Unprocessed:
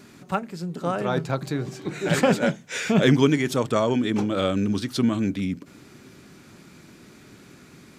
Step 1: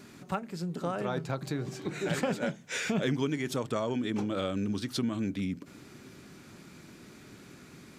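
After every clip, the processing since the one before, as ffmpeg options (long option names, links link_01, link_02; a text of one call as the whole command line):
ffmpeg -i in.wav -af "acompressor=threshold=-28dB:ratio=2.5,volume=-2.5dB" out.wav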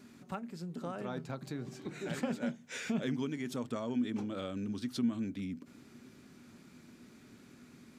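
ffmpeg -i in.wav -af "equalizer=frequency=240:width_type=o:width=0.21:gain=10.5,volume=-8dB" out.wav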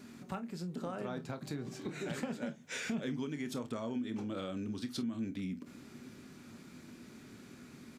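ffmpeg -i in.wav -af "acompressor=threshold=-41dB:ratio=2.5,aecho=1:1:27|48:0.266|0.133,volume=3.5dB" out.wav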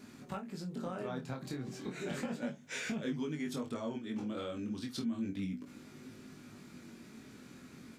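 ffmpeg -i in.wav -af "flanger=delay=19:depth=4.3:speed=0.33,volume=3dB" out.wav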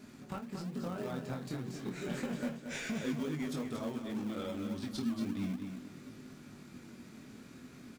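ffmpeg -i in.wav -filter_complex "[0:a]asplit=2[link_01][link_02];[link_02]acrusher=samples=41:mix=1:aa=0.000001:lfo=1:lforange=24.6:lforate=3.5,volume=-9dB[link_03];[link_01][link_03]amix=inputs=2:normalize=0,aecho=1:1:230|460|690:0.422|0.105|0.0264,volume=-1.5dB" out.wav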